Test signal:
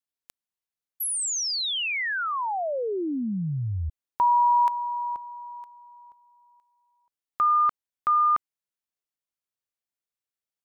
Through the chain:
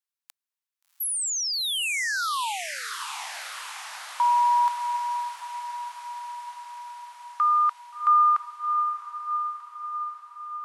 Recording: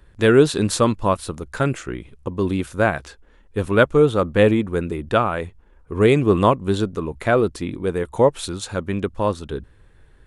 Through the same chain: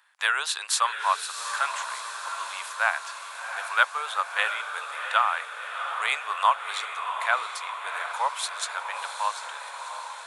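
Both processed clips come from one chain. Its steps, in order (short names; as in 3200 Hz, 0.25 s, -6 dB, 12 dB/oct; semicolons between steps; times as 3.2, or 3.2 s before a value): steep high-pass 850 Hz 36 dB/oct; on a send: diffused feedback echo 0.713 s, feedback 67%, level -8 dB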